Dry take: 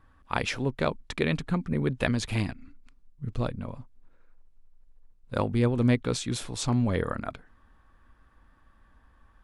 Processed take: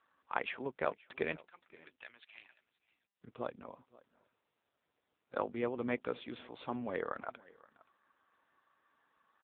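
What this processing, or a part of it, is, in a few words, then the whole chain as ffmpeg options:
satellite phone: -filter_complex "[0:a]asettb=1/sr,asplit=3[s0][s1][s2];[s0]atrim=end=1.384[s3];[s1]atrim=start=1.38:end=3.24,asetpts=PTS-STARTPTS,afade=t=in:d=0.004:c=qsin,afade=t=out:st=1.856:d=0.004:c=qsin,aderivative[s4];[s2]atrim=start=3.236[s5];[s3][s4]acrossfade=d=0.004:c1=hsin:c2=qsin[s6];[s6][s5]acrossfade=d=0.004:c1=qsin:c2=hsin,highpass=400,lowpass=3200,aecho=1:1:524:0.075,volume=0.596" -ar 8000 -c:a libopencore_amrnb -b:a 6700

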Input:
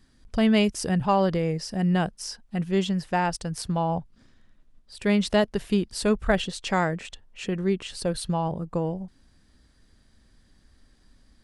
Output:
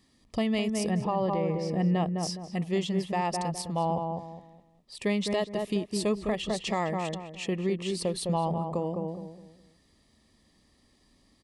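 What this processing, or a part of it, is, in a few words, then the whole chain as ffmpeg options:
PA system with an anti-feedback notch: -filter_complex "[0:a]asettb=1/sr,asplit=3[s0][s1][s2];[s0]atrim=end=0.904[s3];[s1]atrim=start=0.9:end=2.23,asetpts=PTS-STARTPTS,afade=t=in:d=0.004:c=qsin,afade=t=out:st=1.326:d=0.004:c=qsin,aemphasis=mode=reproduction:type=75fm[s4];[s2]atrim=start=2.226[s5];[s3][s4]acrossfade=d=0.004:c1=hsin:c2=qsin[s6];[s6][s5]acrossfade=d=0.004:c1=qsin:c2=hsin,highpass=f=180:p=1,asuperstop=centerf=1500:order=4:qfactor=3.4,asplit=2[s7][s8];[s8]adelay=207,lowpass=f=1100:p=1,volume=0.596,asplit=2[s9][s10];[s10]adelay=207,lowpass=f=1100:p=1,volume=0.33,asplit=2[s11][s12];[s12]adelay=207,lowpass=f=1100:p=1,volume=0.33,asplit=2[s13][s14];[s14]adelay=207,lowpass=f=1100:p=1,volume=0.33[s15];[s7][s9][s11][s13][s15]amix=inputs=5:normalize=0,alimiter=limit=0.112:level=0:latency=1:release=308"

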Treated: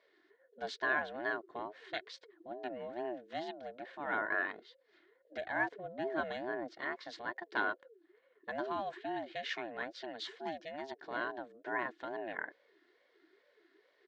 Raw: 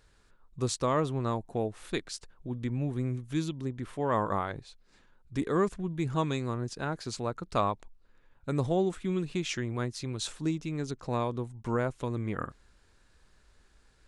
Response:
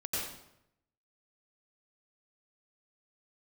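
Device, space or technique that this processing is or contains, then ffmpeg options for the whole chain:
voice changer toy: -filter_complex "[0:a]aeval=exprs='val(0)*sin(2*PI*430*n/s+430*0.25/2.3*sin(2*PI*2.3*n/s))':c=same,highpass=450,equalizer=f=490:t=q:w=4:g=-6,equalizer=f=800:t=q:w=4:g=-8,equalizer=f=1200:t=q:w=4:g=-8,equalizer=f=1700:t=q:w=4:g=8,equalizer=f=2600:t=q:w=4:g=-5,lowpass=f=4000:w=0.5412,lowpass=f=4000:w=1.3066,asettb=1/sr,asplit=3[s0][s1][s2];[s0]atrim=end=5.684[s3];[s1]atrim=start=5.68:end=6.74,asetpts=PTS-STARTPTS,afade=t=in:d=0.004:c=qsin,afade=t=out:st=1.056:d=0.004:c=qsin,tiltshelf=f=910:g=5[s4];[s2]atrim=start=6.736[s5];[s3][s4]acrossfade=d=0.004:c1=hsin:c2=qsin[s6];[s6][s5]acrossfade=d=0.004:c1=qsin:c2=hsin,aecho=1:1:2.8:0.32"

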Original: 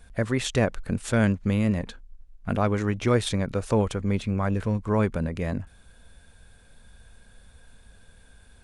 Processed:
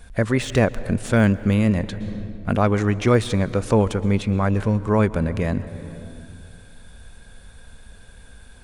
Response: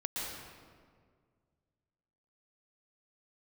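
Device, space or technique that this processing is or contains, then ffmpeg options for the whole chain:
ducked reverb: -filter_complex "[0:a]deesser=0.75,asplit=3[s0][s1][s2];[1:a]atrim=start_sample=2205[s3];[s1][s3]afir=irnorm=-1:irlink=0[s4];[s2]apad=whole_len=380880[s5];[s4][s5]sidechaincompress=threshold=0.0224:ratio=3:attack=7.4:release=409,volume=0.376[s6];[s0][s6]amix=inputs=2:normalize=0,volume=1.68"

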